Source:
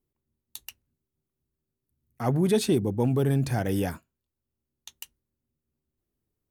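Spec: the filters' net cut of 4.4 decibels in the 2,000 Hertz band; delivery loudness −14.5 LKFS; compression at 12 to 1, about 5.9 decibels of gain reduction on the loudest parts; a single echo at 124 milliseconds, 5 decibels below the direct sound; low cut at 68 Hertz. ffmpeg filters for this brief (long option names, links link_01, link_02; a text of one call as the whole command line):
ffmpeg -i in.wav -af "highpass=68,equalizer=frequency=2000:width_type=o:gain=-6,acompressor=threshold=-24dB:ratio=12,aecho=1:1:124:0.562,volume=15dB" out.wav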